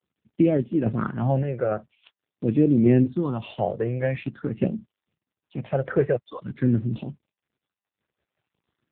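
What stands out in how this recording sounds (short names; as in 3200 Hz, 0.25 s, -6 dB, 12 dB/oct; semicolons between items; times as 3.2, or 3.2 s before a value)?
phasing stages 6, 0.46 Hz, lowest notch 250–1400 Hz; a quantiser's noise floor 12-bit, dither none; random-step tremolo; AMR-NB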